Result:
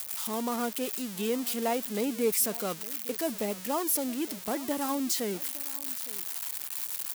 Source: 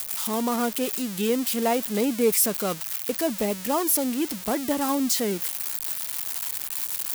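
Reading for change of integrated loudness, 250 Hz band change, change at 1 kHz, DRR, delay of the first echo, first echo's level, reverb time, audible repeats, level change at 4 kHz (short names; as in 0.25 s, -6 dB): -5.5 dB, -6.5 dB, -5.5 dB, none, 0.862 s, -19.5 dB, none, 1, -5.5 dB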